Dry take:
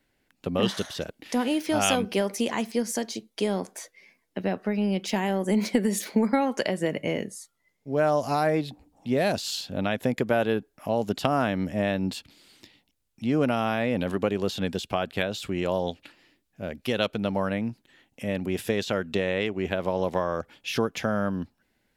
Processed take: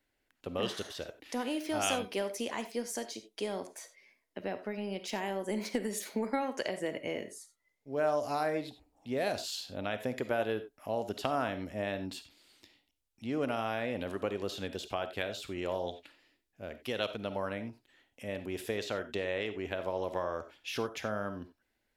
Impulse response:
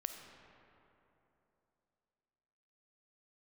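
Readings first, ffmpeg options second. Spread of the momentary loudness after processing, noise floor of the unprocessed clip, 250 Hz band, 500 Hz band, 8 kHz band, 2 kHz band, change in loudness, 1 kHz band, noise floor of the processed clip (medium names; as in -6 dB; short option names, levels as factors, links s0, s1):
10 LU, -73 dBFS, -11.5 dB, -7.5 dB, -7.0 dB, -7.0 dB, -8.5 dB, -7.5 dB, -80 dBFS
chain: -filter_complex "[0:a]equalizer=f=170:t=o:w=0.94:g=-8.5[s0];[1:a]atrim=start_sample=2205,atrim=end_sample=4410[s1];[s0][s1]afir=irnorm=-1:irlink=0,volume=0.562"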